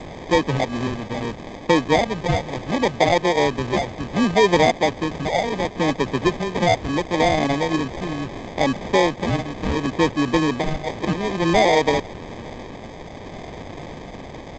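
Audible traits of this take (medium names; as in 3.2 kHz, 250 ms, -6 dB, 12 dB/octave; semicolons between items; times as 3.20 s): a quantiser's noise floor 6-bit, dither triangular; phasing stages 4, 0.71 Hz, lowest notch 400–3200 Hz; aliases and images of a low sample rate 1.4 kHz, jitter 0%; G.722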